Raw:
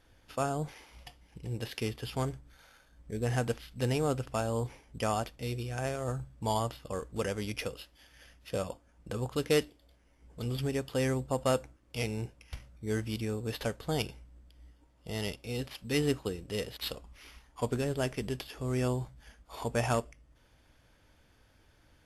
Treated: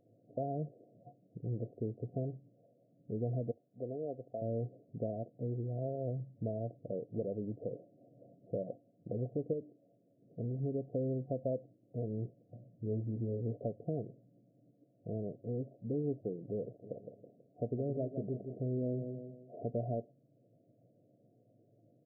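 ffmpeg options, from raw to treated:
ffmpeg -i in.wav -filter_complex "[0:a]asettb=1/sr,asplit=3[link_01][link_02][link_03];[link_01]atrim=end=3.514[link_04];[link_02]atrim=start=3.51:end=4.42,asetpts=PTS-STARTPTS,afade=type=in:duration=0.004:curve=qsin,afade=type=out:start_time=0.906:duration=0.004:curve=qsin,highpass=frequency=800:poles=1[link_05];[link_03]atrim=start=4.416[link_06];[link_04][link_05]acrossfade=duration=0.004:curve1=hsin:curve2=qsin[link_07];[link_07][link_06]acrossfade=duration=0.004:curve1=qsin:curve2=hsin,asettb=1/sr,asplit=3[link_08][link_09][link_10];[link_08]atrim=end=7.714[link_11];[link_09]atrim=start=7.71:end=8.51,asetpts=PTS-STARTPTS,afade=type=in:duration=0.004:curve=qsin,afade=type=out:start_time=0.796:duration=0.004:curve=qsin,acontrast=55[link_12];[link_10]atrim=start=8.506[link_13];[link_11][link_12]acrossfade=duration=0.004:curve1=hsin:curve2=qsin[link_14];[link_14][link_13]acrossfade=duration=0.004:curve1=qsin:curve2=hsin,asettb=1/sr,asplit=3[link_15][link_16][link_17];[link_15]atrim=end=9.534[link_18];[link_16]atrim=start=9.53:end=10.58,asetpts=PTS-STARTPTS,afade=type=in:duration=0.004:curve=qsin,afade=type=out:start_time=1.046:duration=0.004:curve=qsin,acompressor=threshold=-34dB:ratio=2:attack=3.2:release=140:knee=1:detection=peak[link_19];[link_17]atrim=start=10.576[link_20];[link_18][link_19]acrossfade=duration=0.004:curve1=hsin:curve2=qsin[link_21];[link_21][link_20]acrossfade=duration=0.004:curve1=qsin:curve2=hsin,asettb=1/sr,asplit=3[link_22][link_23][link_24];[link_22]atrim=end=12.544[link_25];[link_23]atrim=start=12.54:end=13.67,asetpts=PTS-STARTPTS,afade=type=in:duration=0.004:curve=qsin,afade=type=out:start_time=1.126:duration=0.004:curve=qsin,asplit=2[link_26][link_27];[link_27]adelay=17,volume=-6dB[link_28];[link_26][link_28]amix=inputs=2:normalize=0,atrim=end_sample=49833[link_29];[link_24]atrim=start=13.666[link_30];[link_25][link_29]acrossfade=duration=0.004:curve1=hsin:curve2=qsin[link_31];[link_31][link_30]acrossfade=duration=0.004:curve1=qsin:curve2=hsin,asplit=3[link_32][link_33][link_34];[link_32]afade=type=out:start_time=16.81:duration=0.02[link_35];[link_33]aecho=1:1:162|324|486|648:0.316|0.123|0.0481|0.0188,afade=type=in:start_time=16.81:duration=0.02,afade=type=out:start_time=19.57:duration=0.02[link_36];[link_34]afade=type=in:start_time=19.57:duration=0.02[link_37];[link_35][link_36][link_37]amix=inputs=3:normalize=0,acompressor=threshold=-37dB:ratio=2.5,afftfilt=real='re*between(b*sr/4096,100,730)':imag='im*between(b*sr/4096,100,730)':win_size=4096:overlap=0.75,volume=2dB" out.wav

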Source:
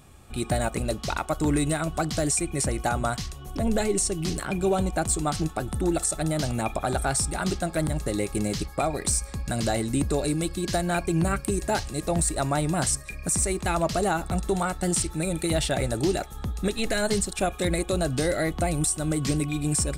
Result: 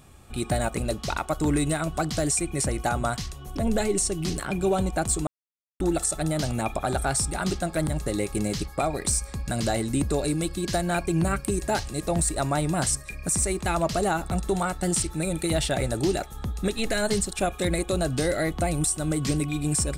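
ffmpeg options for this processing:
ffmpeg -i in.wav -filter_complex "[0:a]asplit=3[link_01][link_02][link_03];[link_01]atrim=end=5.27,asetpts=PTS-STARTPTS,afade=type=out:start_time=5.266:duration=0.004:curve=hsin[link_04];[link_02]atrim=start=5.27:end=5.8,asetpts=PTS-STARTPTS,volume=0[link_05];[link_03]atrim=start=5.8,asetpts=PTS-STARTPTS,afade=type=in:duration=0.004:curve=hsin[link_06];[link_04][link_05][link_06]concat=n=3:v=0:a=1" out.wav

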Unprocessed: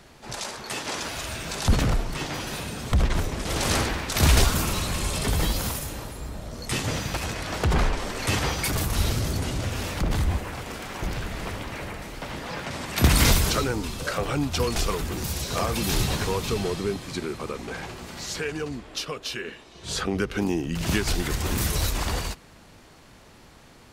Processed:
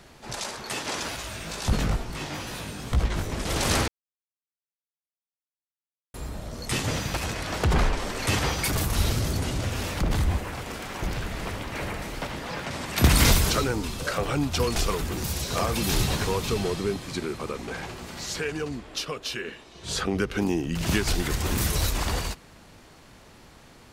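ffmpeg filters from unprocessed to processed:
ffmpeg -i in.wav -filter_complex "[0:a]asettb=1/sr,asplit=3[link_01][link_02][link_03];[link_01]atrim=end=1.164[link_04];[link_02]atrim=start=1.16:end=3.3,asetpts=PTS-STARTPTS,afade=type=in:duration=0.004:curve=qsin,afade=type=out:start_time=2.136:duration=0.004:curve=qsin,flanger=delay=16.5:depth=3.6:speed=2.2[link_05];[link_03]atrim=start=3.296[link_06];[link_04][link_05]acrossfade=duration=0.004:curve1=hsin:curve2=qsin[link_07];[link_07][link_06]acrossfade=duration=0.004:curve1=qsin:curve2=hsin,asplit=5[link_08][link_09][link_10][link_11][link_12];[link_08]atrim=end=3.88,asetpts=PTS-STARTPTS,afade=type=out:start_time=3.876:duration=0.004:curve=hsin[link_13];[link_09]atrim=start=3.88:end=6.14,asetpts=PTS-STARTPTS,volume=0[link_14];[link_10]atrim=start=6.14:end=11.752,asetpts=PTS-STARTPTS,afade=type=in:duration=0.004:curve=hsin[link_15];[link_11]atrim=start=11.748:end=12.272,asetpts=PTS-STARTPTS,volume=3dB[link_16];[link_12]atrim=start=12.268[link_17];[link_13][link_14][link_15]concat=n=3:v=0:a=1[link_18];[link_18][link_16]acrossfade=duration=0.004:curve1=hsin:curve2=hsin[link_19];[link_19][link_17]acrossfade=duration=0.004:curve1=hsin:curve2=hsin" out.wav

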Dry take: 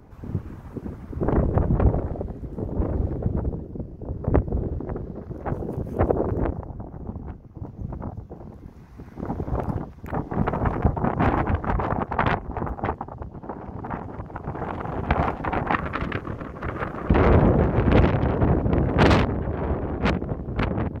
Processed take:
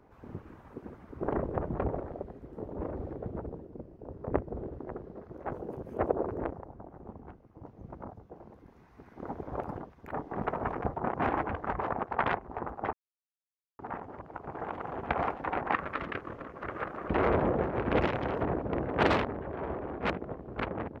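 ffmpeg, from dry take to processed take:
ffmpeg -i in.wav -filter_complex "[0:a]asettb=1/sr,asplit=3[link_01][link_02][link_03];[link_01]atrim=end=18.014[link_04];[link_02]atrim=start=18.01:end=18.43,asetpts=PTS-STARTPTS,afade=type=in:duration=0.004:curve=qsin,afade=type=out:start_time=0.416:duration=0.004:curve=qsin,highshelf=frequency=3400:gain=11.5[link_05];[link_03]atrim=start=18.426[link_06];[link_04][link_05]acrossfade=duration=0.004:curve1=hsin:curve2=qsin[link_07];[link_07][link_06]acrossfade=duration=0.004:curve1=qsin:curve2=hsin,asplit=3[link_08][link_09][link_10];[link_08]atrim=end=12.93,asetpts=PTS-STARTPTS,afade=type=out:start_time=12.926:duration=0.004:curve=hsin[link_11];[link_09]atrim=start=12.93:end=13.79,asetpts=PTS-STARTPTS,volume=0[link_12];[link_10]atrim=start=13.79,asetpts=PTS-STARTPTS,afade=type=in:duration=0.004:curve=hsin[link_13];[link_11][link_12][link_13]concat=n=3:v=0:a=1,bass=frequency=250:gain=-11,treble=frequency=4000:gain=-8,volume=-5.5dB" out.wav

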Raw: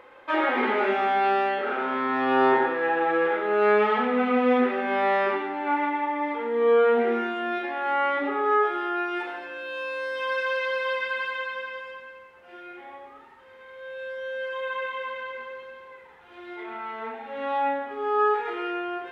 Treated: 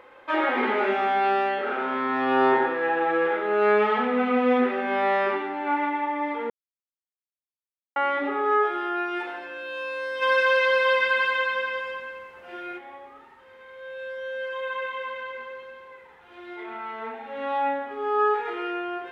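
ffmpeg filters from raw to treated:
ffmpeg -i in.wav -filter_complex "[0:a]asplit=3[link_01][link_02][link_03];[link_01]afade=type=out:start_time=10.21:duration=0.02[link_04];[link_02]acontrast=65,afade=type=in:start_time=10.21:duration=0.02,afade=type=out:start_time=12.77:duration=0.02[link_05];[link_03]afade=type=in:start_time=12.77:duration=0.02[link_06];[link_04][link_05][link_06]amix=inputs=3:normalize=0,asplit=3[link_07][link_08][link_09];[link_07]atrim=end=6.5,asetpts=PTS-STARTPTS,afade=type=out:start_time=6.496:duration=0.004:curve=hsin[link_10];[link_08]atrim=start=6.5:end=7.96,asetpts=PTS-STARTPTS,volume=0[link_11];[link_09]atrim=start=7.96,asetpts=PTS-STARTPTS,afade=type=in:duration=0.004:curve=hsin[link_12];[link_10][link_11][link_12]concat=n=3:v=0:a=1" out.wav

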